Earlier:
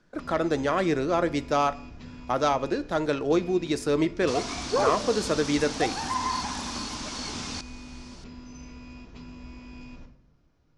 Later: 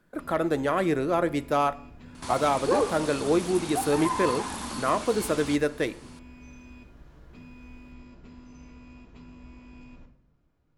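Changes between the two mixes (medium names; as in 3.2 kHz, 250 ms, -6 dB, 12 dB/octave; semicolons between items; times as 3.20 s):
first sound -4.0 dB; second sound: entry -2.05 s; master: remove resonant low-pass 5.7 kHz, resonance Q 2.7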